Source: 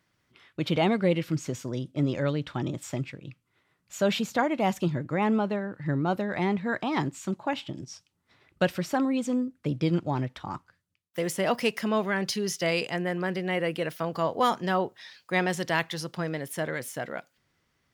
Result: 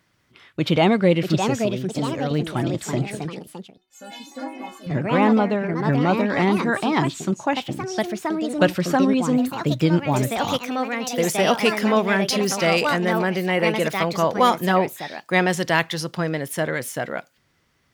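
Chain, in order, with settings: 1.54–2.31 s: compression 2.5:1, threshold -34 dBFS, peak gain reduction 9 dB; 3.25–4.91 s: inharmonic resonator 260 Hz, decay 0.42 s, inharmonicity 0.008; ever faster or slower copies 737 ms, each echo +3 st, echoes 2, each echo -6 dB; trim +7 dB

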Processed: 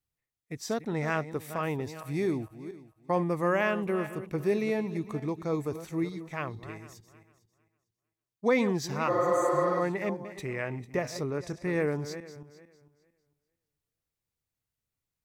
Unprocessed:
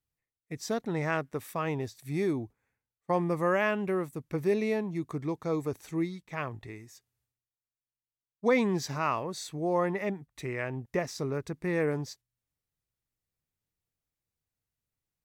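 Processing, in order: backward echo that repeats 226 ms, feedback 42%, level -12 dB; 9.11–9.77 s: spectral replace 230–6000 Hz after; 11.26–11.68 s: low-pass 12 kHz 12 dB/octave

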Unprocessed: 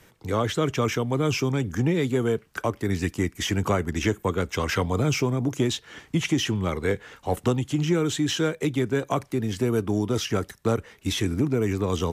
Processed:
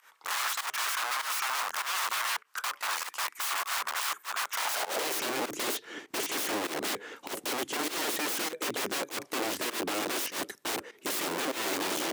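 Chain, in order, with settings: integer overflow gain 27.5 dB; volume shaper 99 bpm, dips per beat 1, -17 dB, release 121 ms; high-pass sweep 1.1 kHz -> 320 Hz, 4.51–5.22 s

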